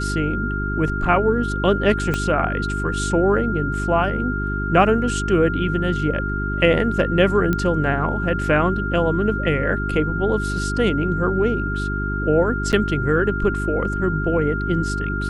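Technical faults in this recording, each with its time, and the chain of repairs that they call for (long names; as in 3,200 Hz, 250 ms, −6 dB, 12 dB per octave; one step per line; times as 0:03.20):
mains hum 50 Hz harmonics 8 −25 dBFS
whistle 1,400 Hz −26 dBFS
0:02.14: click −9 dBFS
0:07.53: click −9 dBFS
0:12.72–0:12.73: drop-out 8.8 ms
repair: click removal
notch filter 1,400 Hz, Q 30
hum removal 50 Hz, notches 8
repair the gap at 0:12.72, 8.8 ms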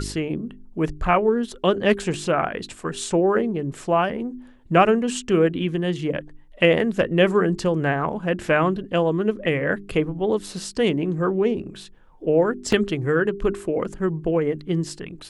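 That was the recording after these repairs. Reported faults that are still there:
0:02.14: click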